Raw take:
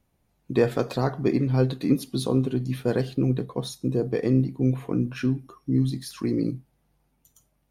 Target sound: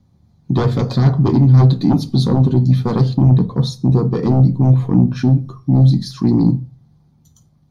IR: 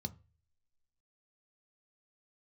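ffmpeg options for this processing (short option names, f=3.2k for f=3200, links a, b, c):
-filter_complex "[0:a]aeval=exprs='0.422*sin(PI/2*3.16*val(0)/0.422)':c=same,asplit=2[a][b];[1:a]atrim=start_sample=2205,afade=t=out:st=0.36:d=0.01,atrim=end_sample=16317[c];[b][c]afir=irnorm=-1:irlink=0,volume=7.5dB[d];[a][d]amix=inputs=2:normalize=0,volume=-12.5dB"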